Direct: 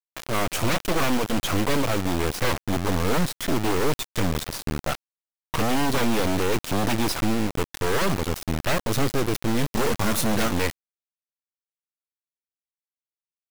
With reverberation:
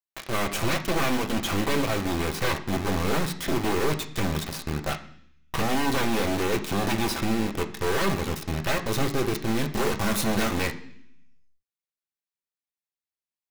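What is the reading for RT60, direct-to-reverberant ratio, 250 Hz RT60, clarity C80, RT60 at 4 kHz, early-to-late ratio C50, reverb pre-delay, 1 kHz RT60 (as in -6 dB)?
0.65 s, 2.5 dB, 0.90 s, 15.0 dB, 0.80 s, 12.5 dB, 3 ms, 0.60 s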